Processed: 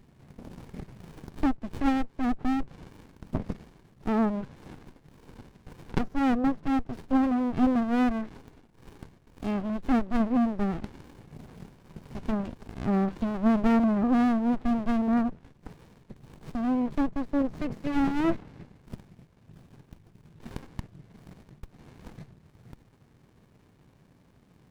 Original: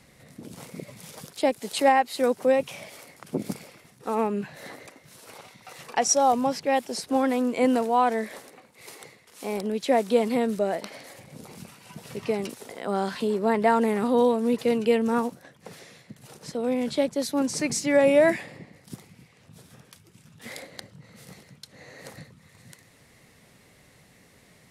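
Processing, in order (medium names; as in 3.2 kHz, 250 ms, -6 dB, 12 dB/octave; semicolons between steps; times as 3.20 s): low-pass that closes with the level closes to 1 kHz, closed at -21.5 dBFS; sliding maximum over 65 samples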